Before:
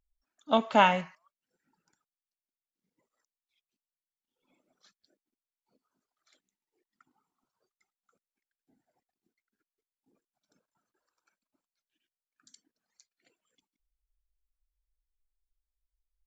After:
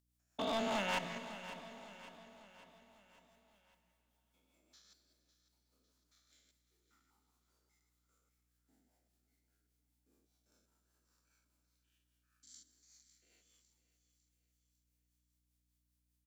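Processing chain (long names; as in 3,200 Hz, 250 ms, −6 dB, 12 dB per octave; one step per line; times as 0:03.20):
spectrum averaged block by block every 200 ms
Bessel high-pass filter 180 Hz
high-shelf EQ 3,200 Hz +11 dB
brickwall limiter −22.5 dBFS, peak gain reduction 11 dB
rotating-speaker cabinet horn 5 Hz
hard clipping −34.5 dBFS, distortion −9 dB
mains hum 60 Hz, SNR 32 dB
repeating echo 552 ms, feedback 50%, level −13.5 dB
dense smooth reverb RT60 4.3 s, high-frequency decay 0.95×, pre-delay 0 ms, DRR 11 dB
level +2.5 dB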